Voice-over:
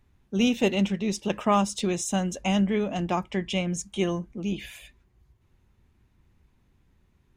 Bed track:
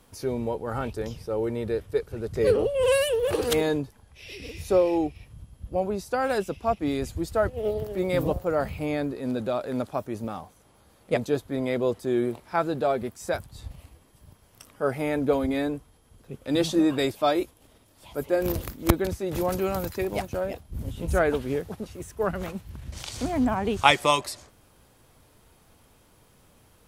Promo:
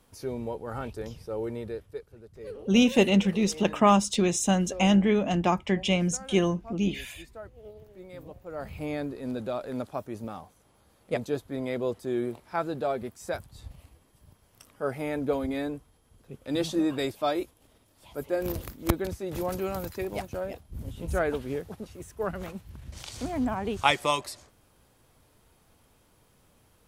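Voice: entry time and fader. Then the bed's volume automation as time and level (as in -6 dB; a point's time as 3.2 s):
2.35 s, +2.5 dB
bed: 1.56 s -5 dB
2.34 s -19.5 dB
8.36 s -19.5 dB
8.77 s -4.5 dB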